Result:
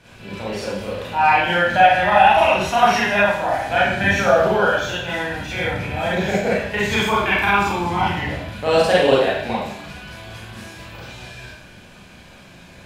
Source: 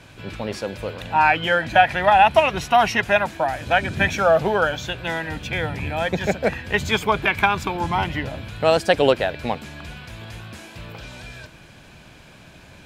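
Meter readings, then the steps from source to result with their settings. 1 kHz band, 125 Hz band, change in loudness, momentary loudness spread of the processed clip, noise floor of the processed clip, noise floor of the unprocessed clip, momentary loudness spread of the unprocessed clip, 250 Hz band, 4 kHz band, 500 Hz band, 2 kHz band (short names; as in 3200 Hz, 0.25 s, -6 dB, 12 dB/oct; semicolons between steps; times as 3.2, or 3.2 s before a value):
+2.5 dB, +1.5 dB, +2.5 dB, 22 LU, -44 dBFS, -47 dBFS, 21 LU, +3.0 dB, +2.0 dB, +2.0 dB, +2.5 dB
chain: Schroeder reverb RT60 0.7 s, combs from 31 ms, DRR -8 dB; gain -6 dB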